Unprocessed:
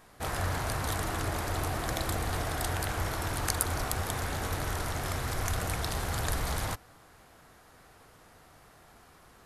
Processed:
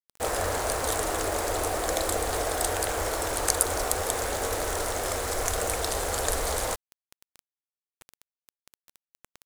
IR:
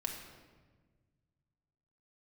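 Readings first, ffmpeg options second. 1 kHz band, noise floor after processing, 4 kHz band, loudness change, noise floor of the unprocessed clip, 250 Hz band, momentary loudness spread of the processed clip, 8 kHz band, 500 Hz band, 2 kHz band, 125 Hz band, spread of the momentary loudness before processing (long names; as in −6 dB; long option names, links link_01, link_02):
+5.0 dB, below −85 dBFS, +4.5 dB, +5.0 dB, −57 dBFS, +1.0 dB, 4 LU, +8.5 dB, +9.5 dB, +3.0 dB, −5.0 dB, 3 LU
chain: -af "adynamicequalizer=threshold=0.00501:dfrequency=190:dqfactor=0.84:tfrequency=190:tqfactor=0.84:attack=5:release=100:ratio=0.375:range=1.5:mode=cutabove:tftype=bell,acontrast=60,equalizer=frequency=125:width_type=o:width=1:gain=-12,equalizer=frequency=500:width_type=o:width=1:gain=11,equalizer=frequency=8000:width_type=o:width=1:gain=9,acrusher=bits=5:mix=0:aa=0.000001,areverse,acompressor=mode=upward:threshold=-40dB:ratio=2.5,areverse,volume=-4.5dB"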